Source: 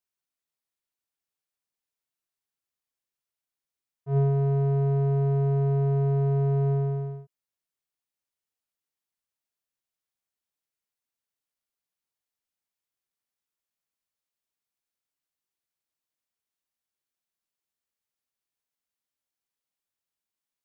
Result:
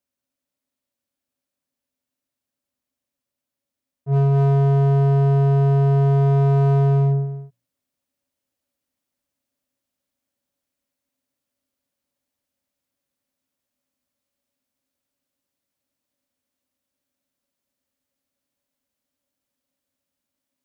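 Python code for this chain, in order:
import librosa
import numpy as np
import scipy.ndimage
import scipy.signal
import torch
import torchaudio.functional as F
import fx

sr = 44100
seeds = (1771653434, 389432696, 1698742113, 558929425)

y = scipy.signal.sosfilt(scipy.signal.butter(2, 50.0, 'highpass', fs=sr, output='sos'), x)
y = fx.low_shelf(y, sr, hz=190.0, db=9.5)
y = fx.hum_notches(y, sr, base_hz=60, count=4)
y = y + 10.0 ** (-6.0 / 20.0) * np.pad(y, (int(238 * sr / 1000.0), 0))[:len(y)]
y = fx.rider(y, sr, range_db=4, speed_s=2.0)
y = np.clip(y, -10.0 ** (-18.0 / 20.0), 10.0 ** (-18.0 / 20.0))
y = fx.small_body(y, sr, hz=(260.0, 560.0), ring_ms=90, db=16)
y = F.gain(torch.from_numpy(y), 2.0).numpy()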